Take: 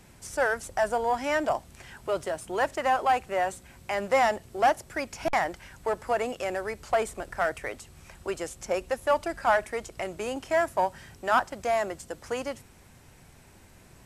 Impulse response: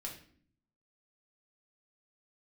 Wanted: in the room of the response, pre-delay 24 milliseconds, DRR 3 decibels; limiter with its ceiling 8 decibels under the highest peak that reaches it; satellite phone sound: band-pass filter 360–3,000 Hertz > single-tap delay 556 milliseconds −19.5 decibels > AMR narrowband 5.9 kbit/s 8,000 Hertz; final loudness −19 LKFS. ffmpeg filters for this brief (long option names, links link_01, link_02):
-filter_complex "[0:a]alimiter=limit=-18.5dB:level=0:latency=1,asplit=2[link_01][link_02];[1:a]atrim=start_sample=2205,adelay=24[link_03];[link_02][link_03]afir=irnorm=-1:irlink=0,volume=-1dB[link_04];[link_01][link_04]amix=inputs=2:normalize=0,highpass=360,lowpass=3000,aecho=1:1:556:0.106,volume=12.5dB" -ar 8000 -c:a libopencore_amrnb -b:a 5900